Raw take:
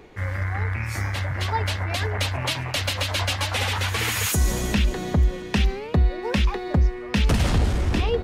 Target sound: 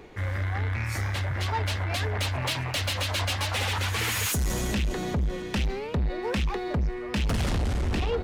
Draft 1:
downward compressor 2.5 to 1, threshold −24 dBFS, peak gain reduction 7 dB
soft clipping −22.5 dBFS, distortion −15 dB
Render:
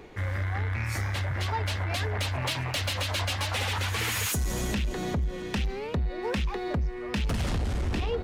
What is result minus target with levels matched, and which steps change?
downward compressor: peak gain reduction +7 dB
remove: downward compressor 2.5 to 1, threshold −24 dBFS, peak gain reduction 7 dB

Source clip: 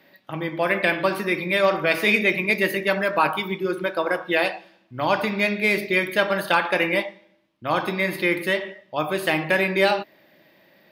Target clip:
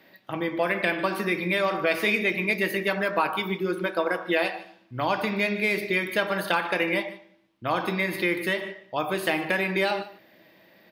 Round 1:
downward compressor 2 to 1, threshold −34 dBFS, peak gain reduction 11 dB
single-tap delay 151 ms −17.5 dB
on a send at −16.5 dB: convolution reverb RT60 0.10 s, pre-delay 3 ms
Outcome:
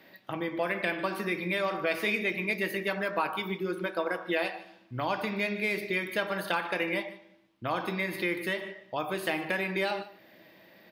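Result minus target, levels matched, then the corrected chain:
downward compressor: peak gain reduction +5 dB
downward compressor 2 to 1, threshold −23.5 dBFS, peak gain reduction 6 dB
single-tap delay 151 ms −17.5 dB
on a send at −16.5 dB: convolution reverb RT60 0.10 s, pre-delay 3 ms

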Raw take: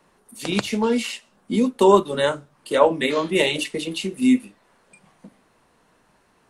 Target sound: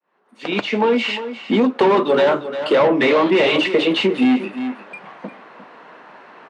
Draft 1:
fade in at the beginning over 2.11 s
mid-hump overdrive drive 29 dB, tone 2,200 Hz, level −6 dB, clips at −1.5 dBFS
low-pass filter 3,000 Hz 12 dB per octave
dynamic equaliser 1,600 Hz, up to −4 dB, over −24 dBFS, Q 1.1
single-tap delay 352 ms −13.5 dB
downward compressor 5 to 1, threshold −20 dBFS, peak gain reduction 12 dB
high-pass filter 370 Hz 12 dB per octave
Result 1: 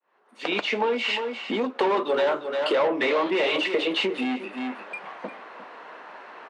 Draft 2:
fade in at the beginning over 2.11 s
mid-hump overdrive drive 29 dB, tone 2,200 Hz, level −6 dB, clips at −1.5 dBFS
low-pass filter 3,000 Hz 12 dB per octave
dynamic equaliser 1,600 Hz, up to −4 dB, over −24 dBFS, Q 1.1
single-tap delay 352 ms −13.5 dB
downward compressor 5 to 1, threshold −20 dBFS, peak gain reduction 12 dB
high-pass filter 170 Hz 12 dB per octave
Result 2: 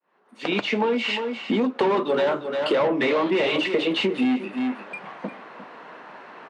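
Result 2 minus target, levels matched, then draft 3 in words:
downward compressor: peak gain reduction +7 dB
fade in at the beginning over 2.11 s
mid-hump overdrive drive 29 dB, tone 2,200 Hz, level −6 dB, clips at −1.5 dBFS
low-pass filter 3,000 Hz 12 dB per octave
dynamic equaliser 1,600 Hz, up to −4 dB, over −24 dBFS, Q 1.1
single-tap delay 352 ms −13.5 dB
downward compressor 5 to 1, threshold −11.5 dBFS, peak gain reduction 5.5 dB
high-pass filter 170 Hz 12 dB per octave

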